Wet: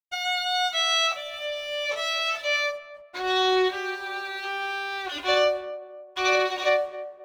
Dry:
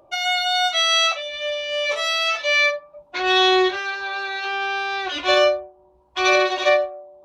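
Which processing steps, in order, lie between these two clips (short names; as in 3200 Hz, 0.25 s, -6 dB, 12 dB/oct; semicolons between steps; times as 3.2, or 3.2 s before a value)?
2.56–3.57 bell 2500 Hz -6 dB 0.82 oct; crossover distortion -45.5 dBFS; narrowing echo 0.266 s, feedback 42%, band-pass 500 Hz, level -12.5 dB; gain -5 dB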